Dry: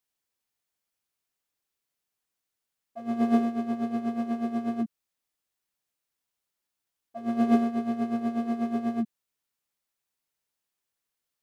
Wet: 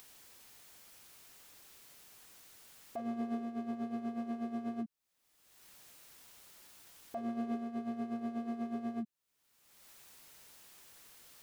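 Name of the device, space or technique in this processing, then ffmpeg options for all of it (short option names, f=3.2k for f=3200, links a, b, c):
upward and downward compression: -af "acompressor=mode=upward:threshold=-43dB:ratio=2.5,acompressor=threshold=-42dB:ratio=5,volume=4dB"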